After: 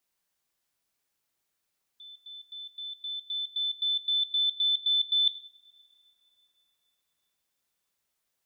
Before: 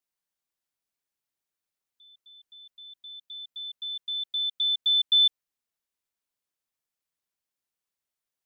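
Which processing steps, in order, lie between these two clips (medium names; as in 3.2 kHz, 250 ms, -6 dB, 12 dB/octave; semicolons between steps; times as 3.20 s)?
reverse; compression, threshold -32 dBFS, peak gain reduction 13 dB; reverse; reverberation, pre-delay 3 ms, DRR 10.5 dB; trim +7.5 dB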